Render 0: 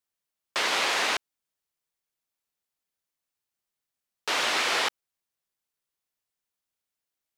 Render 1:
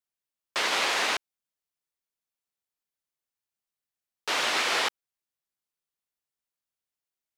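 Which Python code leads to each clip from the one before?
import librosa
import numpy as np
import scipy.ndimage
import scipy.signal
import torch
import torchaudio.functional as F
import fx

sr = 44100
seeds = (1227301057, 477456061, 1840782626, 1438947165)

y = fx.upward_expand(x, sr, threshold_db=-35.0, expansion=1.5)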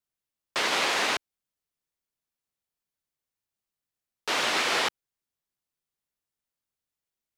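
y = fx.low_shelf(x, sr, hz=310.0, db=7.0)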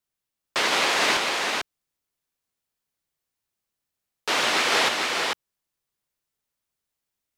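y = x + 10.0 ** (-3.5 / 20.0) * np.pad(x, (int(446 * sr / 1000.0), 0))[:len(x)]
y = y * librosa.db_to_amplitude(3.5)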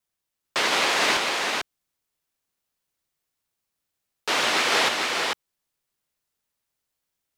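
y = fx.quant_companded(x, sr, bits=8)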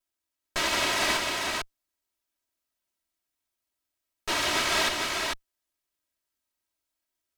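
y = fx.lower_of_two(x, sr, delay_ms=3.1)
y = y * librosa.db_to_amplitude(-2.5)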